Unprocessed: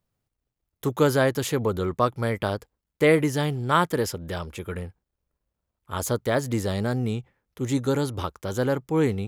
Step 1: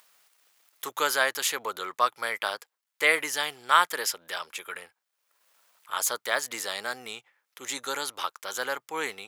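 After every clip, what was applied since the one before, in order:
high-pass filter 1,200 Hz 12 dB per octave
upward compression, threshold −51 dBFS
level +5 dB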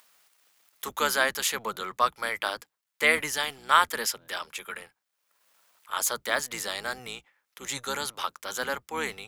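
sub-octave generator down 1 octave, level −2 dB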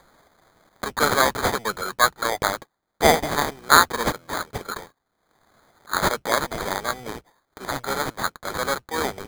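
decimation without filtering 16×
level +6 dB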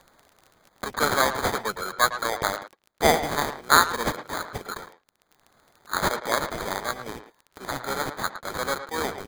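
surface crackle 19 per second −34 dBFS
far-end echo of a speakerphone 110 ms, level −10 dB
level −3 dB

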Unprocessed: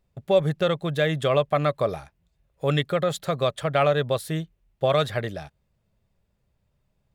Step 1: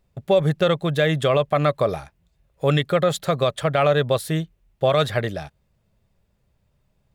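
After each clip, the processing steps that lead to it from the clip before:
brickwall limiter −13 dBFS, peak gain reduction 4.5 dB
level +4.5 dB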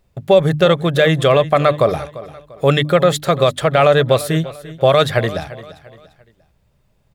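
mains-hum notches 50/100/150/200/250/300 Hz
repeating echo 345 ms, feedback 37%, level −17 dB
level +6.5 dB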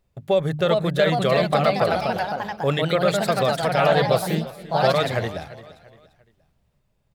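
delay with pitch and tempo change per echo 440 ms, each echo +2 semitones, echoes 3
level −8.5 dB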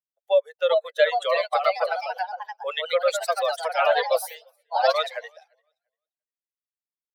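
spectral dynamics exaggerated over time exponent 2
Butterworth high-pass 480 Hz 96 dB per octave
level +3 dB

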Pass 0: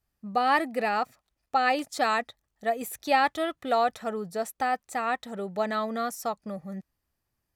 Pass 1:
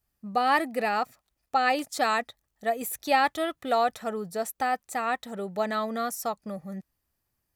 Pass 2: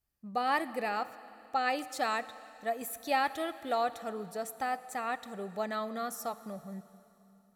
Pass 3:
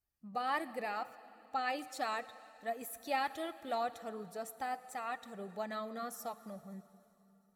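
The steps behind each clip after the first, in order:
high-shelf EQ 9,300 Hz +7.5 dB
dense smooth reverb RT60 3.1 s, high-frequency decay 1×, DRR 14 dB; level −6.5 dB
spectral magnitudes quantised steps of 15 dB; level −5 dB

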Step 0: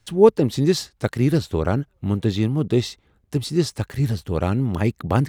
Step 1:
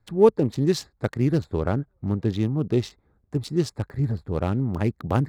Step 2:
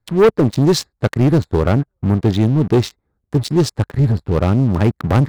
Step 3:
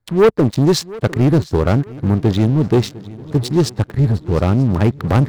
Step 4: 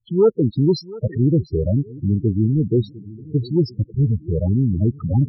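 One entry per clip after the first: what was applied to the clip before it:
adaptive Wiener filter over 15 samples; level −3 dB
leveller curve on the samples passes 3
feedback echo with a long and a short gap by turns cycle 936 ms, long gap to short 3 to 1, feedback 34%, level −19.5 dB
spectral peaks only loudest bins 8; level −3 dB

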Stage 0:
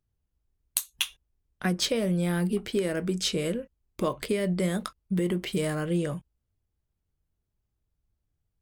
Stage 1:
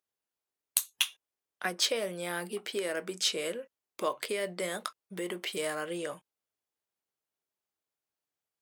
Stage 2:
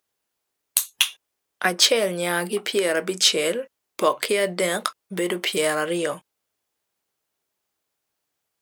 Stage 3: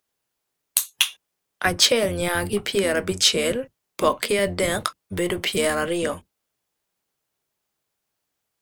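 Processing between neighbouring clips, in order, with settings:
high-pass filter 540 Hz 12 dB per octave
boost into a limiter +12.5 dB; level −1 dB
sub-octave generator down 1 octave, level −1 dB

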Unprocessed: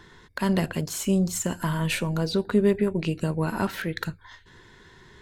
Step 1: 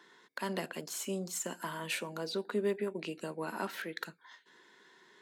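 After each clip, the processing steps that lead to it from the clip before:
Bessel high-pass filter 330 Hz, order 8
level −7.5 dB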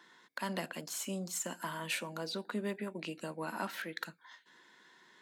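parametric band 410 Hz −9.5 dB 0.31 octaves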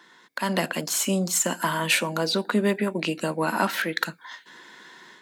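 automatic gain control gain up to 7.5 dB
level +7 dB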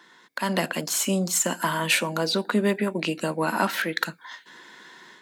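no processing that can be heard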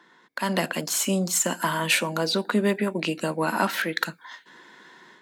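one half of a high-frequency compander decoder only

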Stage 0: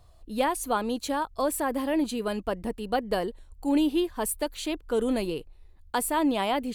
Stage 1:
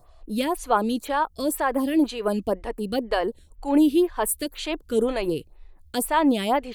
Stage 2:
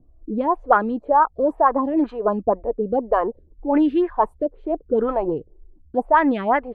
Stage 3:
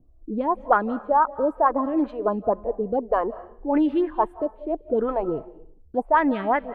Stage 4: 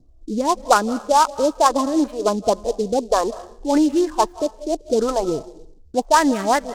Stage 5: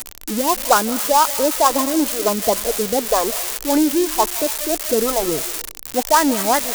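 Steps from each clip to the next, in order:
phaser with staggered stages 2 Hz; level +7 dB
envelope-controlled low-pass 260–1,800 Hz up, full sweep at −16.5 dBFS
convolution reverb RT60 0.55 s, pre-delay 138 ms, DRR 17 dB; level −3 dB
short delay modulated by noise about 5,200 Hz, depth 0.035 ms; level +4 dB
spike at every zero crossing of −10 dBFS

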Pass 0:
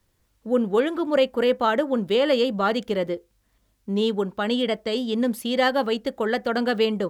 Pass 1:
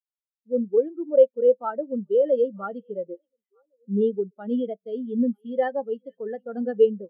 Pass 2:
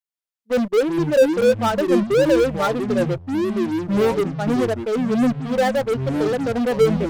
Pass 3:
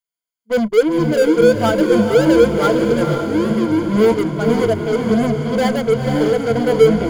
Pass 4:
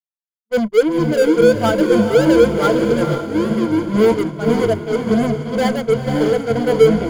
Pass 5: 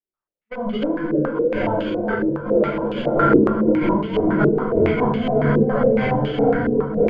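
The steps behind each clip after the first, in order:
automatic gain control gain up to 9 dB; echo through a band-pass that steps 469 ms, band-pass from 2,800 Hz, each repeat −1.4 octaves, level −11 dB; every bin expanded away from the loudest bin 2.5 to 1; level −4 dB
low-shelf EQ 360 Hz −5.5 dB; in parallel at −8 dB: fuzz pedal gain 39 dB, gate −47 dBFS; on the sum: delay with pitch and tempo change per echo 127 ms, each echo −7 semitones, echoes 3, each echo −6 dB
EQ curve with evenly spaced ripples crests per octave 1.8, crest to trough 11 dB; feedback delay with all-pass diffusion 484 ms, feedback 46%, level −5.5 dB; level +1 dB
downward expander −15 dBFS
compressor whose output falls as the input rises −24 dBFS, ratio −1; rectangular room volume 110 cubic metres, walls mixed, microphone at 1.9 metres; low-pass on a step sequencer 7.2 Hz 390–3,000 Hz; level −8 dB

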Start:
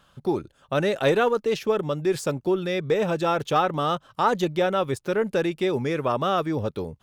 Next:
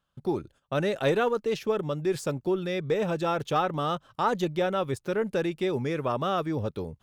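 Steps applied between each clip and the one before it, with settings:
low-shelf EQ 180 Hz +4 dB
noise gate −48 dBFS, range −16 dB
level −4.5 dB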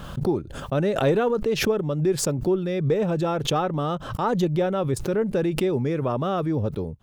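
tilt shelving filter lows +5 dB, about 730 Hz
background raised ahead of every attack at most 69 dB per second
level +1.5 dB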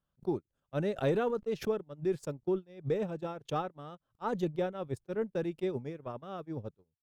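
noise gate −22 dBFS, range −40 dB
level −8.5 dB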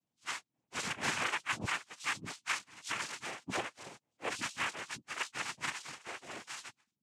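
frequency axis turned over on the octave scale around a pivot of 900 Hz
cochlear-implant simulation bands 4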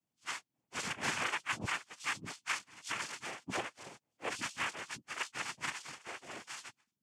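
notch filter 3,900 Hz, Q 18
level −1 dB

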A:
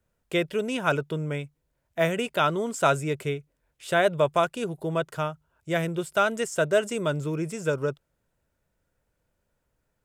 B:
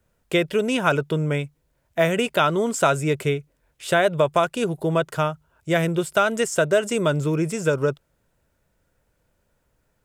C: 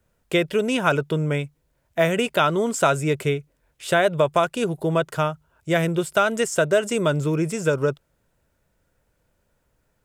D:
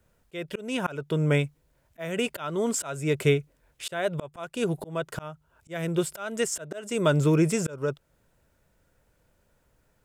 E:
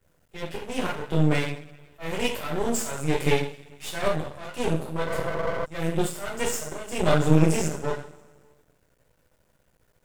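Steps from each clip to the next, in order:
downward compressor 2.5 to 1, threshold −23 dBFS, peak gain reduction 5.5 dB; level +7 dB
no processing that can be heard
volume swells 480 ms; level +1.5 dB
coupled-rooms reverb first 0.48 s, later 1.7 s, from −20 dB, DRR −9 dB; healed spectral selection 0:05.09–0:05.62, 210–1,700 Hz before; half-wave rectification; level −4.5 dB

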